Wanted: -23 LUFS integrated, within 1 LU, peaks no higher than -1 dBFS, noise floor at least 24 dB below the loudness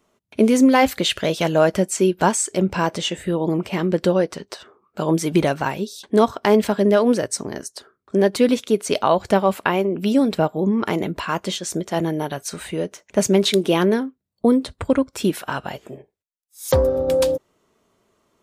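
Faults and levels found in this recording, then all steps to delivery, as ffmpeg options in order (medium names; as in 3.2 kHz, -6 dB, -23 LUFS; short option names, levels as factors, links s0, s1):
loudness -20.0 LUFS; peak level -3.0 dBFS; loudness target -23.0 LUFS
-> -af "volume=0.708"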